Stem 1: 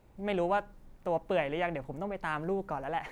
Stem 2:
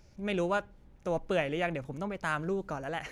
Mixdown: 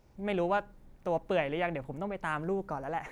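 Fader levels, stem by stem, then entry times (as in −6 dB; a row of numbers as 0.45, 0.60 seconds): −2.5, −10.5 decibels; 0.00, 0.00 seconds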